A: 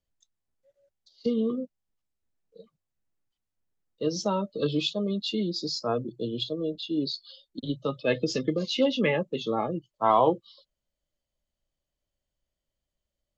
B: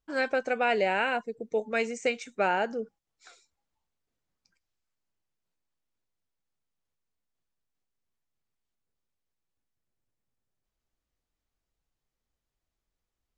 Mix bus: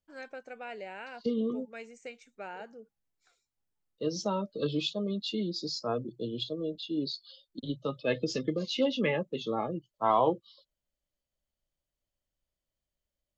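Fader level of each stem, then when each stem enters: -4.0 dB, -16.0 dB; 0.00 s, 0.00 s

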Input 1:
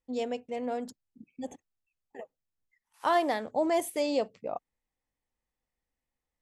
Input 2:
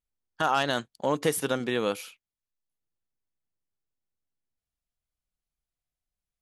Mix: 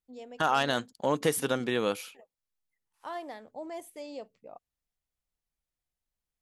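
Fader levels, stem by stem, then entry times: -13.0 dB, -1.0 dB; 0.00 s, 0.00 s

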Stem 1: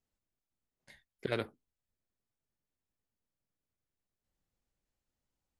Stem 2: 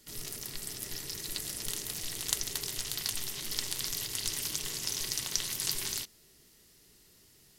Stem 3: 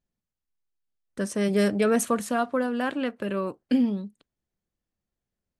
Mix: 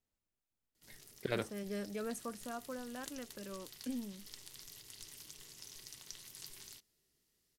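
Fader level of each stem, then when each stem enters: -2.0 dB, -18.0 dB, -18.5 dB; 0.00 s, 0.75 s, 0.15 s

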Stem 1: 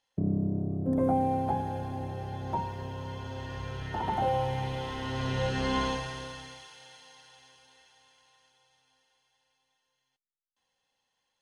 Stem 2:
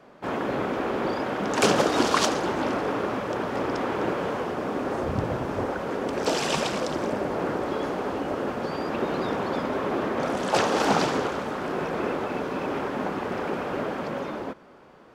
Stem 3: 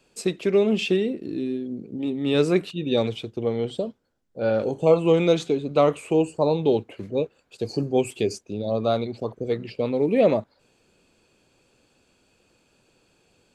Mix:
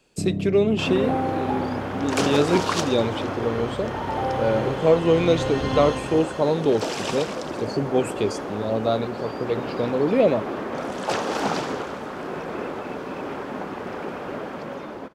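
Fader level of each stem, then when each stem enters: +1.5 dB, -2.5 dB, 0.0 dB; 0.00 s, 0.55 s, 0.00 s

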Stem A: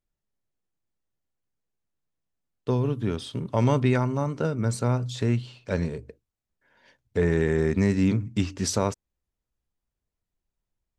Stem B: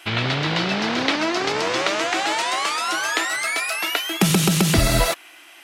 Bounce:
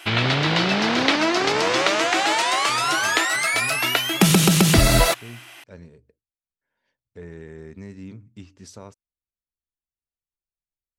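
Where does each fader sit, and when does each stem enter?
-16.5 dB, +2.0 dB; 0.00 s, 0.00 s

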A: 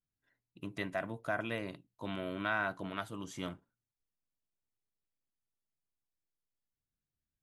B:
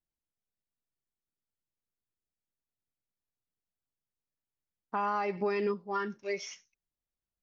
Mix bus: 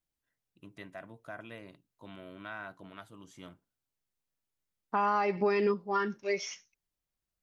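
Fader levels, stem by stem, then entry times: -9.0 dB, +3.0 dB; 0.00 s, 0.00 s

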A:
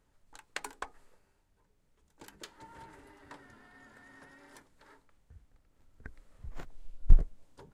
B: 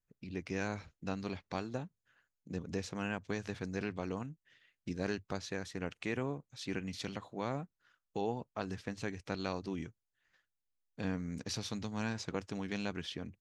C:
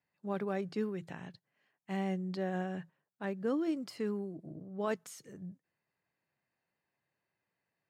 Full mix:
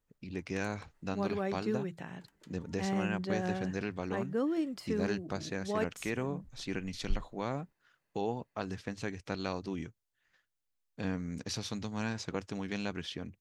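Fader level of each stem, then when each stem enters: -14.0 dB, +1.5 dB, +1.0 dB; 0.00 s, 0.00 s, 0.90 s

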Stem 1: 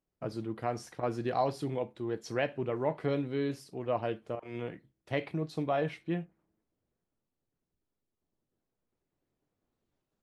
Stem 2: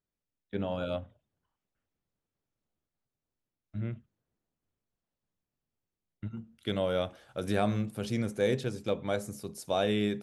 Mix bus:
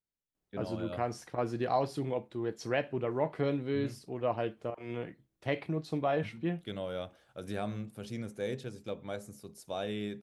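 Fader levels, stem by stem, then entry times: 0.0 dB, -8.0 dB; 0.35 s, 0.00 s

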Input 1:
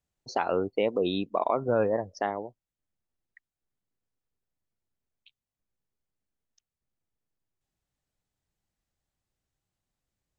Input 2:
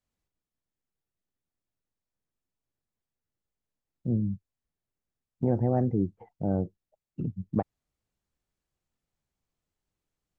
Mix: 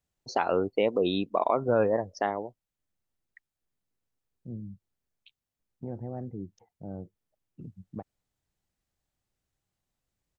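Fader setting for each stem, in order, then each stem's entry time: +1.0 dB, -12.0 dB; 0.00 s, 0.40 s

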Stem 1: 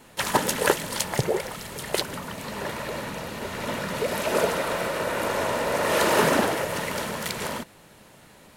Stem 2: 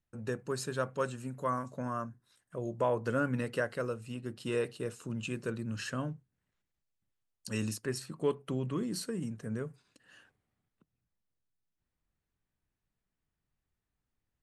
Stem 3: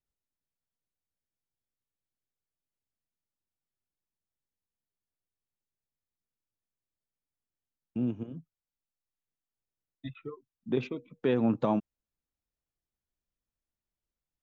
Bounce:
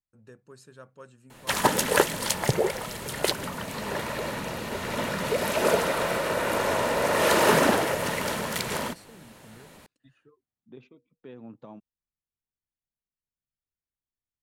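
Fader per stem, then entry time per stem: +0.5 dB, -14.5 dB, -18.0 dB; 1.30 s, 0.00 s, 0.00 s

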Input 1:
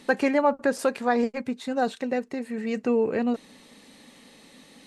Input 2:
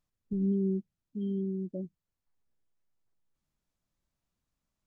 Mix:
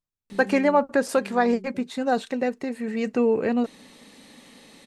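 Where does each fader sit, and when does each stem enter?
+2.0 dB, -8.0 dB; 0.30 s, 0.00 s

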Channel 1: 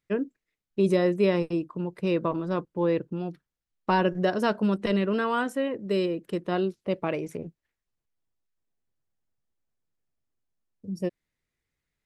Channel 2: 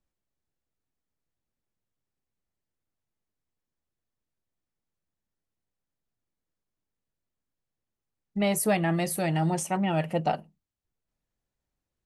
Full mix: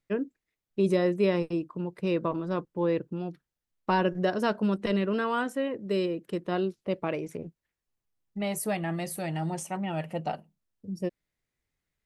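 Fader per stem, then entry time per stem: -2.0 dB, -5.5 dB; 0.00 s, 0.00 s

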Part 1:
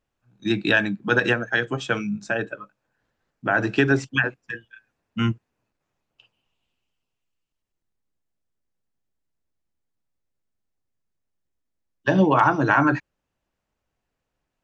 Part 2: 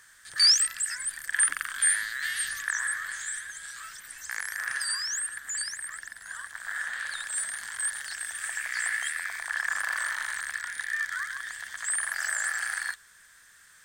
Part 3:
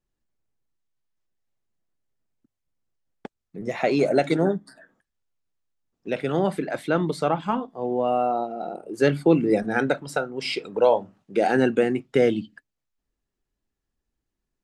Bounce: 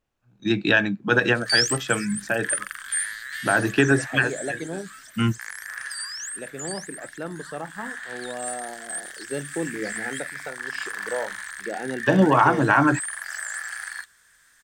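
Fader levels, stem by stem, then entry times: +0.5 dB, -2.5 dB, -11.0 dB; 0.00 s, 1.10 s, 0.30 s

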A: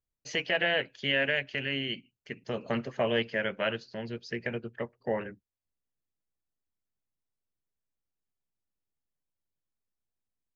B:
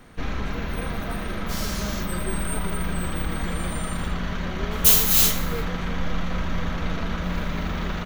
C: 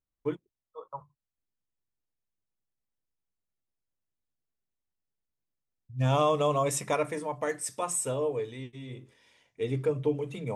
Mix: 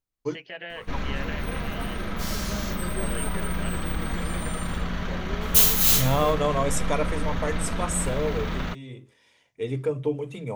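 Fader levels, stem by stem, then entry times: -10.5 dB, -1.5 dB, +1.5 dB; 0.00 s, 0.70 s, 0.00 s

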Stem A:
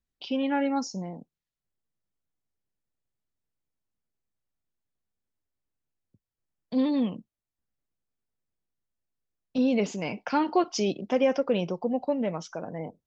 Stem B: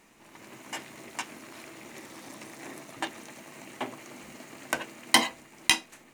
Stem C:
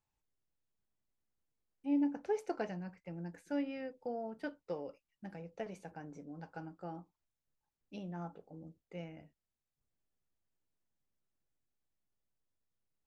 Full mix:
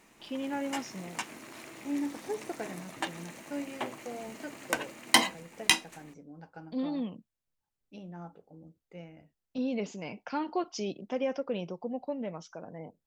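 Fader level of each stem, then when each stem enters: -8.0 dB, -1.0 dB, -1.0 dB; 0.00 s, 0.00 s, 0.00 s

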